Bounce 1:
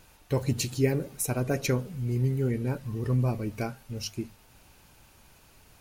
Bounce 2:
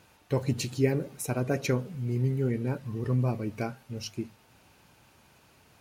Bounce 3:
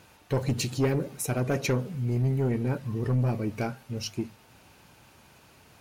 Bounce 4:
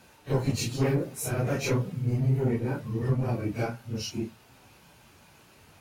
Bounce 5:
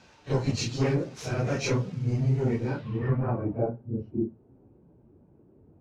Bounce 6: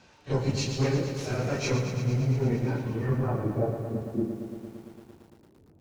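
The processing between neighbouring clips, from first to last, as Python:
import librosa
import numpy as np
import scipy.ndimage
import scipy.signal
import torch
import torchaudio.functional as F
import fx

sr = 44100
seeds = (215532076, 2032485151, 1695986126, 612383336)

y1 = scipy.signal.sosfilt(scipy.signal.butter(2, 95.0, 'highpass', fs=sr, output='sos'), x)
y1 = fx.high_shelf(y1, sr, hz=6100.0, db=-8.0)
y2 = 10.0 ** (-23.0 / 20.0) * np.tanh(y1 / 10.0 ** (-23.0 / 20.0))
y2 = y2 * librosa.db_to_amplitude(4.0)
y3 = fx.phase_scramble(y2, sr, seeds[0], window_ms=100)
y4 = scipy.signal.medfilt(y3, 5)
y4 = fx.filter_sweep_lowpass(y4, sr, from_hz=6200.0, to_hz=360.0, start_s=2.63, end_s=3.84, q=1.9)
y5 = fx.echo_feedback(y4, sr, ms=71, feedback_pct=56, wet_db=-21)
y5 = fx.echo_crushed(y5, sr, ms=114, feedback_pct=80, bits=9, wet_db=-8.5)
y5 = y5 * librosa.db_to_amplitude(-1.0)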